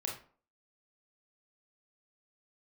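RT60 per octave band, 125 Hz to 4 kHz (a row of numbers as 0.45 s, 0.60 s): 0.40 s, 0.45 s, 0.45 s, 0.45 s, 0.35 s, 0.25 s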